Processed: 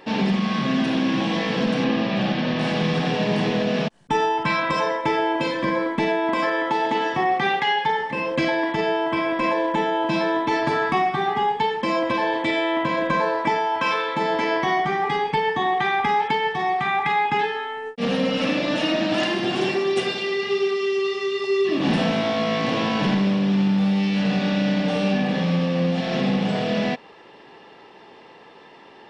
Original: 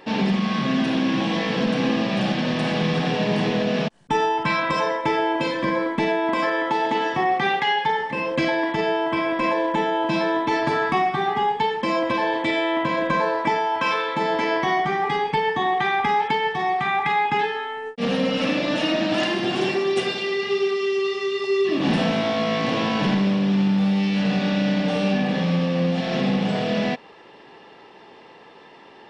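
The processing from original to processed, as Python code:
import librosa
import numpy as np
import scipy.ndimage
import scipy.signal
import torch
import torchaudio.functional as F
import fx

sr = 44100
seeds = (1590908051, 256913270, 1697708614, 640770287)

y = fx.lowpass(x, sr, hz=4800.0, slope=12, at=(1.84, 2.61))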